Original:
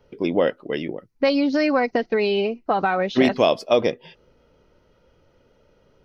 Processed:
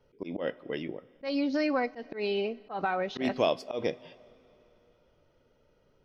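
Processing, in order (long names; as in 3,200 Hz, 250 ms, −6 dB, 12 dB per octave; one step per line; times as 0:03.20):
coupled-rooms reverb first 0.25 s, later 3.2 s, from −18 dB, DRR 16 dB
volume swells 124 ms
level −8.5 dB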